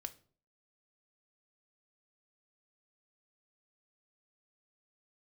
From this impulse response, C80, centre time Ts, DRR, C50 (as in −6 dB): 23.0 dB, 4 ms, 7.0 dB, 18.0 dB